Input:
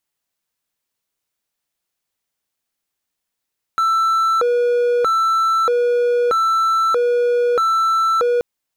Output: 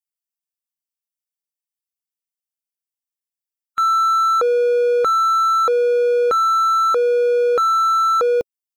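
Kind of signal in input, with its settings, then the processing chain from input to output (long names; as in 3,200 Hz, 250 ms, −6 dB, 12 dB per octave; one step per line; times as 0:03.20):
siren hi-lo 483–1,330 Hz 0.79 per second triangle −11.5 dBFS 4.63 s
spectral dynamics exaggerated over time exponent 1.5
in parallel at −12 dB: soft clipping −27.5 dBFS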